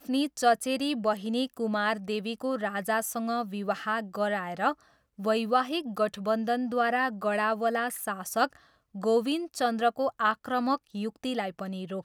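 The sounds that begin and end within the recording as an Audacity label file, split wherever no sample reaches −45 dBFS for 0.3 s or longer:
5.190000	8.570000	sound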